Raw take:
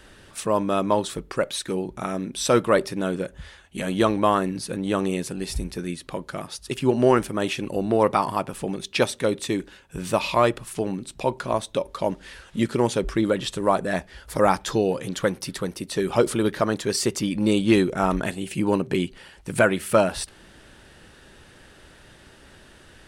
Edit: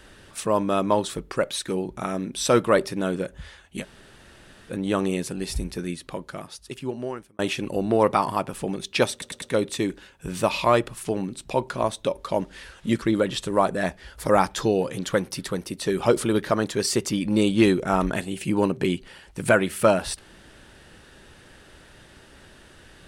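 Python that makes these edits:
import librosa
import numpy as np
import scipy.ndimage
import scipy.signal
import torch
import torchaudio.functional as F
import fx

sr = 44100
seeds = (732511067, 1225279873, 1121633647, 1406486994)

y = fx.edit(x, sr, fx.room_tone_fill(start_s=3.82, length_s=0.89, crossfade_s=0.06),
    fx.fade_out_span(start_s=5.85, length_s=1.54),
    fx.stutter(start_s=9.12, slice_s=0.1, count=4),
    fx.cut(start_s=12.72, length_s=0.4), tone=tone)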